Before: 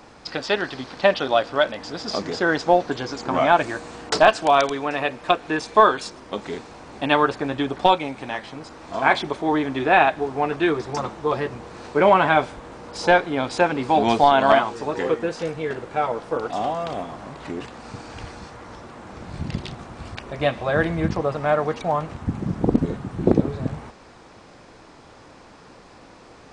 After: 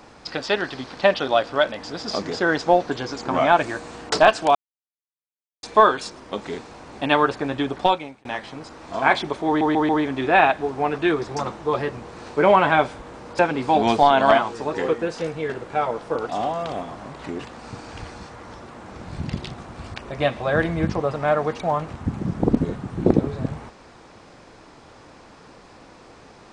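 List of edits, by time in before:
4.55–5.63 mute
7.61–8.25 fade out equal-power
9.47 stutter 0.14 s, 4 plays
12.97–13.6 cut

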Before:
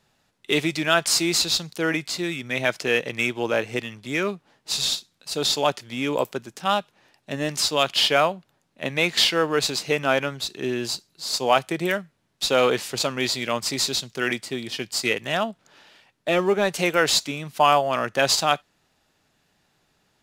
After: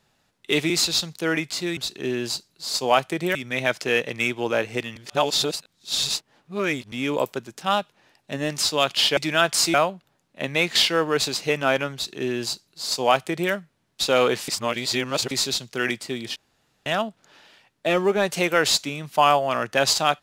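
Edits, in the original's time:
0.7–1.27 move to 8.16
3.95–5.91 reverse
10.36–11.94 copy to 2.34
12.9–13.73 reverse
14.78–15.28 room tone

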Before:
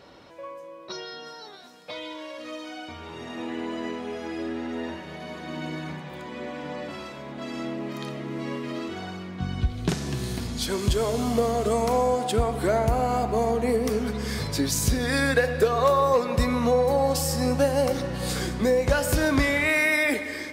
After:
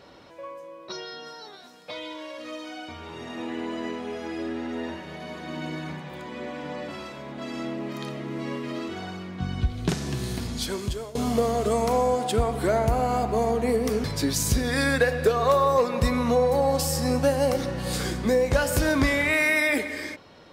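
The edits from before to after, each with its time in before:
10.55–11.15 fade out, to -19.5 dB
14.04–14.4 cut

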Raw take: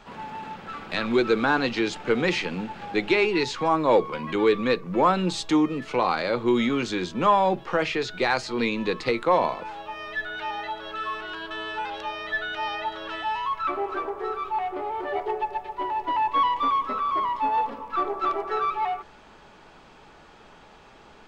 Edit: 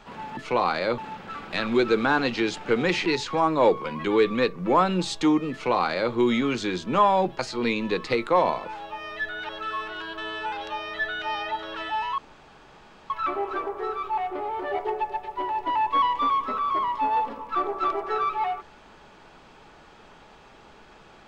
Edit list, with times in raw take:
2.45–3.34 cut
5.8–6.41 copy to 0.37
7.67–8.35 cut
10.45–10.82 cut
13.51 insert room tone 0.92 s

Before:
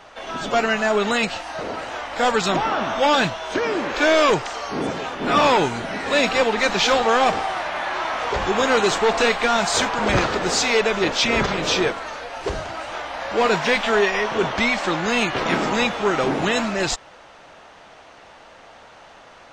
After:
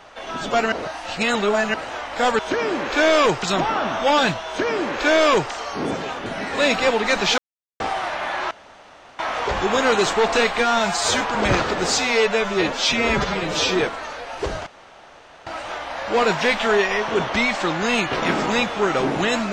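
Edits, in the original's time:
0.72–1.74 reverse
3.43–4.47 copy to 2.39
5.22–5.79 cut
6.91–7.33 mute
8.04 insert room tone 0.68 s
9.43–9.85 stretch 1.5×
10.62–11.83 stretch 1.5×
12.7 insert room tone 0.80 s

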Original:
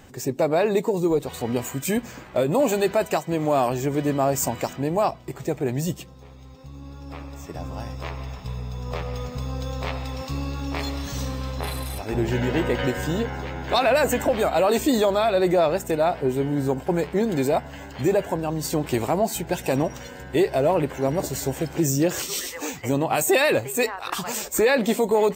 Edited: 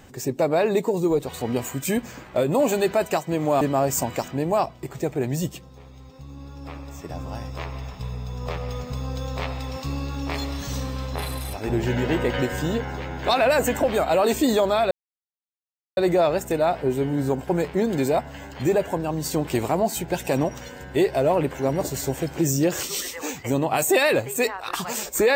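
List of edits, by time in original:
3.61–4.06 cut
15.36 insert silence 1.06 s

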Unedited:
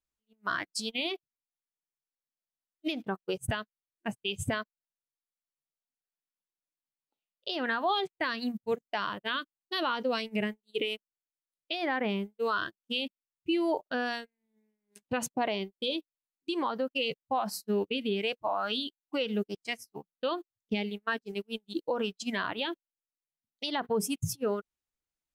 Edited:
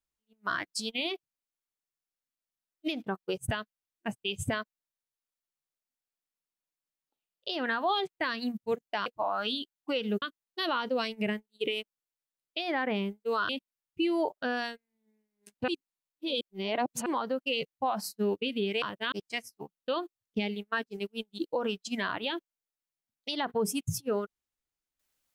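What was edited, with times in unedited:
9.06–9.36 swap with 18.31–19.47
12.63–12.98 cut
15.17–16.55 reverse

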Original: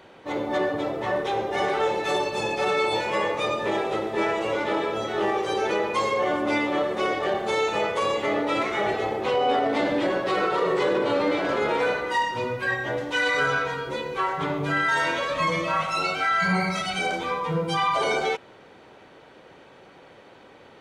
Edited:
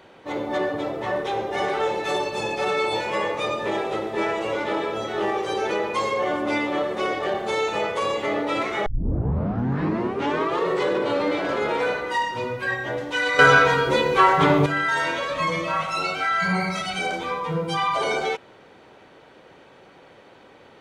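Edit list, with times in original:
8.86 tape start 1.84 s
13.39–14.66 gain +10 dB

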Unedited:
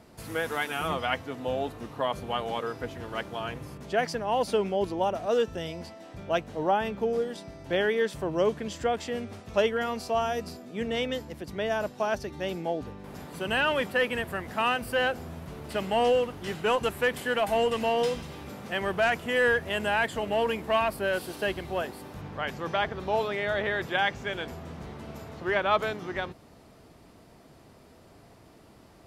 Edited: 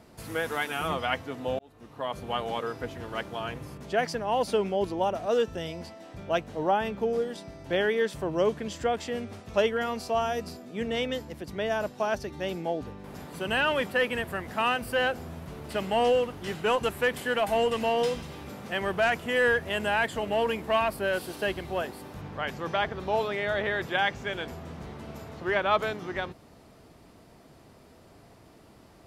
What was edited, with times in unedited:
1.59–2.34 fade in

